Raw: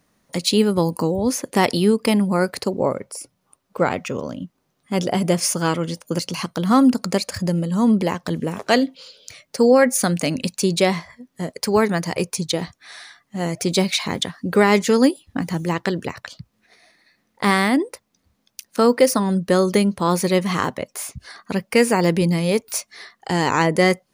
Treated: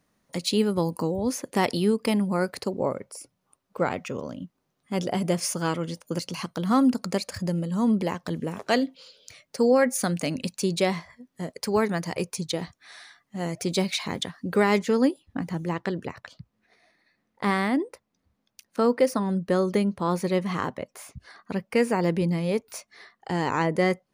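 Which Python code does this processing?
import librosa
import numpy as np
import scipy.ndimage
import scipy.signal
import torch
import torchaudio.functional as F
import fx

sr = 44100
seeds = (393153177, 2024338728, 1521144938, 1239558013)

y = fx.high_shelf(x, sr, hz=3400.0, db=fx.steps((0.0, -2.0), (14.77, -9.5)))
y = y * librosa.db_to_amplitude(-6.0)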